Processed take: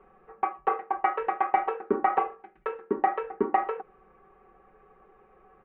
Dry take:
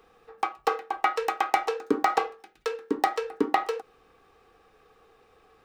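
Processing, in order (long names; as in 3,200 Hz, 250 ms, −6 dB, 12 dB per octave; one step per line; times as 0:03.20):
Bessel low-pass filter 1,400 Hz, order 8
comb filter 5.3 ms, depth 94%
in parallel at −1 dB: brickwall limiter −17.5 dBFS, peak gain reduction 11 dB
on the sum: level −5 dB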